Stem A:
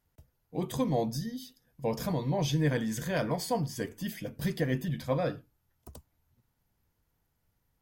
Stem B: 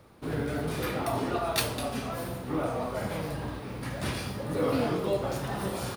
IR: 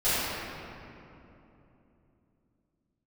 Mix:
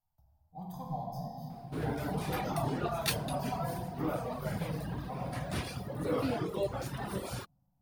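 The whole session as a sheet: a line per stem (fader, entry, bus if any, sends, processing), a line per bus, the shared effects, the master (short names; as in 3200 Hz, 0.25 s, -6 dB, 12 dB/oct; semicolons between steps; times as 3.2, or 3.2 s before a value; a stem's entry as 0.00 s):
-9.5 dB, 0.00 s, send -12 dB, flange 0.37 Hz, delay 3 ms, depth 4.9 ms, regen +67%; EQ curve 190 Hz 0 dB, 430 Hz -23 dB, 760 Hz +11 dB, 2300 Hz -18 dB, 5100 Hz -3 dB, 7900 Hz -11 dB, 15000 Hz +5 dB
-3.5 dB, 1.50 s, no send, reverb removal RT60 0.98 s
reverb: on, RT60 3.0 s, pre-delay 4 ms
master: bell 94 Hz +2.5 dB 1.7 oct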